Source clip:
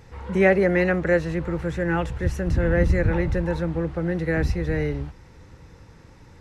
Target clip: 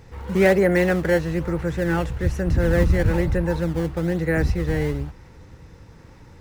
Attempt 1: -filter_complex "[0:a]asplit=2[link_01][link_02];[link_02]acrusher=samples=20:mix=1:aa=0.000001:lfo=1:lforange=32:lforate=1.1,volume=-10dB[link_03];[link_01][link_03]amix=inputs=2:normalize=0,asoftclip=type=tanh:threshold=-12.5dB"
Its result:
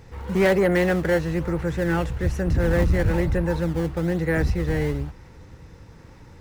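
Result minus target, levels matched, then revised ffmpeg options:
soft clipping: distortion +11 dB
-filter_complex "[0:a]asplit=2[link_01][link_02];[link_02]acrusher=samples=20:mix=1:aa=0.000001:lfo=1:lforange=32:lforate=1.1,volume=-10dB[link_03];[link_01][link_03]amix=inputs=2:normalize=0,asoftclip=type=tanh:threshold=-5dB"

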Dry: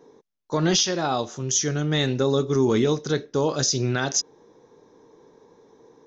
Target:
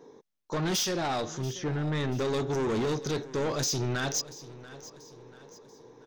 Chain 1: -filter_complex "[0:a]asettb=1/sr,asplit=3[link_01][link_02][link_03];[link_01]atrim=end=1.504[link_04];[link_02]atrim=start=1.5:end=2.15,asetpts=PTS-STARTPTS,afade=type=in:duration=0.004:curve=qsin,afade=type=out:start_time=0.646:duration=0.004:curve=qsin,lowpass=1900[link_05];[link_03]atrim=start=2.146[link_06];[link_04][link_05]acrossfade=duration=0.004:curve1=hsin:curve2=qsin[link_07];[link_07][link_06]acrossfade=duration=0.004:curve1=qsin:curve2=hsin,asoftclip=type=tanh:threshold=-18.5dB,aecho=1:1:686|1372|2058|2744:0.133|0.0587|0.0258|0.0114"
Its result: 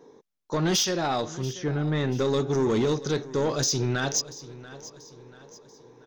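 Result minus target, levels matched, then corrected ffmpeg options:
soft clipping: distortion −6 dB
-filter_complex "[0:a]asettb=1/sr,asplit=3[link_01][link_02][link_03];[link_01]atrim=end=1.504[link_04];[link_02]atrim=start=1.5:end=2.15,asetpts=PTS-STARTPTS,afade=type=in:duration=0.004:curve=qsin,afade=type=out:start_time=0.646:duration=0.004:curve=qsin,lowpass=1900[link_05];[link_03]atrim=start=2.146[link_06];[link_04][link_05]acrossfade=duration=0.004:curve1=hsin:curve2=qsin[link_07];[link_07][link_06]acrossfade=duration=0.004:curve1=qsin:curve2=hsin,asoftclip=type=tanh:threshold=-26dB,aecho=1:1:686|1372|2058|2744:0.133|0.0587|0.0258|0.0114"

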